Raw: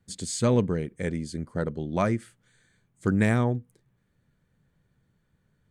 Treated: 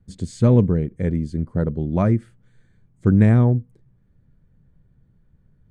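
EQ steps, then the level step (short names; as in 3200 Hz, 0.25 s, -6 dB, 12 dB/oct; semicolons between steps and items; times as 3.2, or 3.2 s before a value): tilt -3.5 dB/oct; 0.0 dB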